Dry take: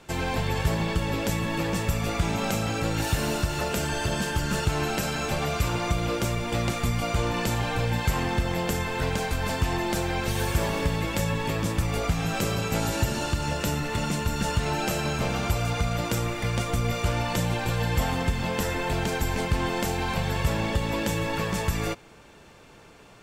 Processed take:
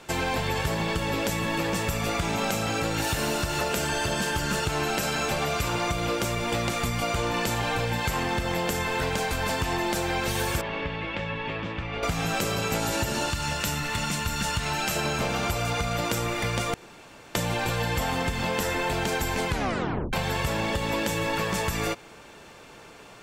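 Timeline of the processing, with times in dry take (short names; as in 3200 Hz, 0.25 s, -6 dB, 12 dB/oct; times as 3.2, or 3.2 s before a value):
10.61–12.03 ladder low-pass 3500 Hz, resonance 35%
13.3–14.96 bell 430 Hz -9 dB 1.7 oct
16.74–17.35 room tone
19.49 tape stop 0.64 s
whole clip: low shelf 220 Hz -7.5 dB; compressor, threshold -28 dBFS; gain +5 dB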